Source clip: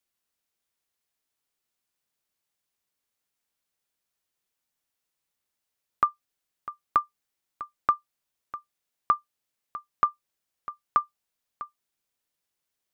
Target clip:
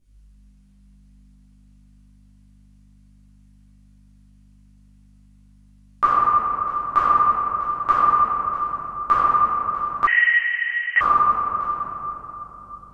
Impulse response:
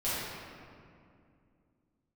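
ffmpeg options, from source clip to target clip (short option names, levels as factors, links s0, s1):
-filter_complex "[0:a]aeval=exprs='val(0)+0.000631*(sin(2*PI*50*n/s)+sin(2*PI*2*50*n/s)/2+sin(2*PI*3*50*n/s)/3+sin(2*PI*4*50*n/s)/4+sin(2*PI*5*50*n/s)/5)':c=same[s0];[1:a]atrim=start_sample=2205,asetrate=22932,aresample=44100[s1];[s0][s1]afir=irnorm=-1:irlink=0,asettb=1/sr,asplit=3[s2][s3][s4];[s2]atrim=end=10.074[s5];[s3]atrim=start=10.07:end=11.01,asetpts=PTS-STARTPTS,afade=t=in:d=0.004:c=qsin,afade=t=out:st=0.936:d=0.004:c=qsin,lowpass=f=2600:t=q:w=0.5098,lowpass=f=2600:t=q:w=0.6013,lowpass=f=2600:t=q:w=0.9,lowpass=f=2600:t=q:w=2.563,afreqshift=-3100[s6];[s4]atrim=start=11.006[s7];[s5][s6]acrossfade=d=0.004:c1=hsin:c2=qsin[s8];[s8][s7]acrossfade=d=0.004:c1=qsin:c2=hsin"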